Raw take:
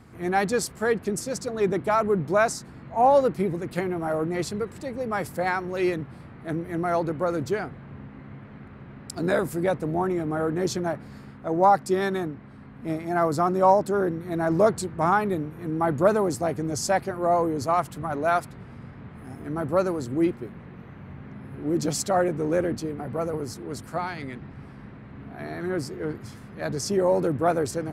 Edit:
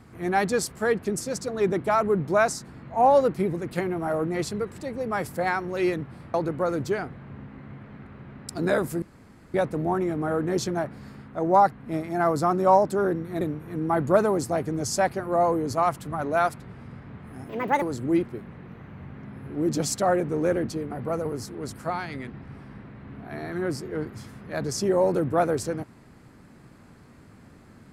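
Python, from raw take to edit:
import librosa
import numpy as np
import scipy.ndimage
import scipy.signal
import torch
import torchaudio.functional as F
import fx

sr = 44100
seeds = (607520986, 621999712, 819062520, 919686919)

y = fx.edit(x, sr, fx.cut(start_s=6.34, length_s=0.61),
    fx.insert_room_tone(at_s=9.63, length_s=0.52),
    fx.cut(start_s=11.81, length_s=0.87),
    fx.cut(start_s=14.37, length_s=0.95),
    fx.speed_span(start_s=19.4, length_s=0.5, speed=1.52), tone=tone)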